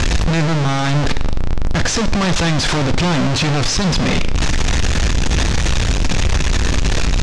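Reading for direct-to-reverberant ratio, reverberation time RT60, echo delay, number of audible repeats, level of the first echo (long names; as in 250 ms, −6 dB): 11.5 dB, 0.75 s, no echo audible, no echo audible, no echo audible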